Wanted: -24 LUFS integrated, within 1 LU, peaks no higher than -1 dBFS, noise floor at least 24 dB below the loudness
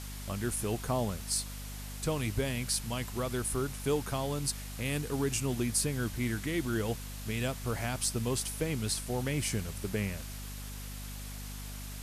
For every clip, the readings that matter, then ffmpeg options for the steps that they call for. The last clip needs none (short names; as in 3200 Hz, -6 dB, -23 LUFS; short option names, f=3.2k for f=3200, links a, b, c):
hum 50 Hz; harmonics up to 250 Hz; hum level -40 dBFS; noise floor -42 dBFS; noise floor target -58 dBFS; loudness -34.0 LUFS; peak -17.5 dBFS; loudness target -24.0 LUFS
-> -af "bandreject=f=50:t=h:w=6,bandreject=f=100:t=h:w=6,bandreject=f=150:t=h:w=6,bandreject=f=200:t=h:w=6,bandreject=f=250:t=h:w=6"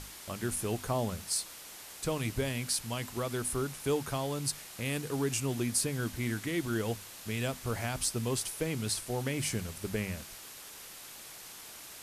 hum none; noise floor -48 dBFS; noise floor target -58 dBFS
-> -af "afftdn=nr=10:nf=-48"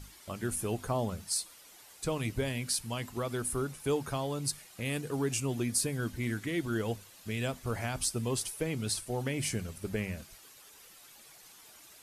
noise floor -55 dBFS; noise floor target -58 dBFS
-> -af "afftdn=nr=6:nf=-55"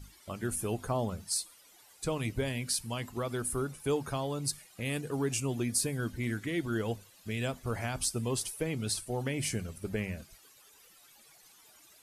noise floor -60 dBFS; loudness -34.0 LUFS; peak -18.5 dBFS; loudness target -24.0 LUFS
-> -af "volume=10dB"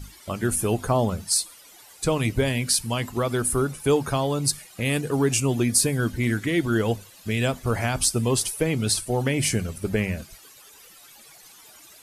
loudness -24.0 LUFS; peak -8.5 dBFS; noise floor -50 dBFS